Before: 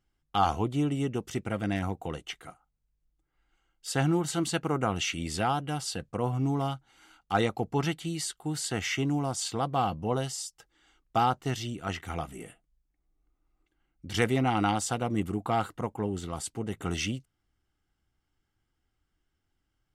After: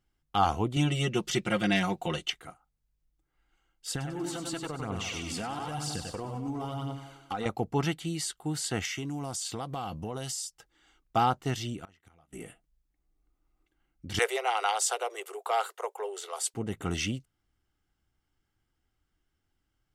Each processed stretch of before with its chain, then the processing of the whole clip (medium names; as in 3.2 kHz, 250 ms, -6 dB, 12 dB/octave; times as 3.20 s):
0.76–2.30 s: peaking EQ 3.8 kHz +11 dB 1.9 oct + comb 5.6 ms, depth 89%
3.91–7.46 s: feedback delay 95 ms, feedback 56%, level -6.5 dB + compression 16:1, threshold -31 dBFS + phaser 1 Hz, delay 4.4 ms, feedback 46%
8.85–10.45 s: treble shelf 3.4 kHz +8.5 dB + compression 12:1, threshold -31 dBFS
11.84–12.33 s: inverted gate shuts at -30 dBFS, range -27 dB + AM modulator 160 Hz, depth 25%
14.19–16.54 s: steep high-pass 390 Hz 96 dB/octave + treble shelf 3.5 kHz +6.5 dB
whole clip: none